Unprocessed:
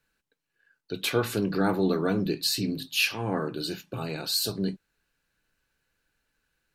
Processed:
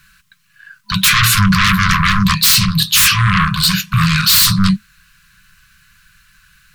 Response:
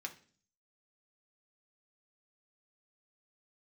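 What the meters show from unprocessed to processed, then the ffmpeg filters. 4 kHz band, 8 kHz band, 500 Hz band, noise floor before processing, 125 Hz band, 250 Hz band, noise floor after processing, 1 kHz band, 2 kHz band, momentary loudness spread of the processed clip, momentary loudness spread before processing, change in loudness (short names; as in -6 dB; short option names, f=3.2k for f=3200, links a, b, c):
+17.5 dB, +20.5 dB, under -35 dB, -82 dBFS, +19.5 dB, +11.5 dB, -56 dBFS, +18.5 dB, +19.0 dB, 5 LU, 9 LU, +16.5 dB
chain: -af "acontrast=72,aeval=exprs='0.562*sin(PI/2*7.08*val(0)/0.562)':c=same,afftfilt=real='re*(1-between(b*sr/4096,210,1000))':imag='im*(1-between(b*sr/4096,210,1000))':win_size=4096:overlap=0.75,volume=-1.5dB"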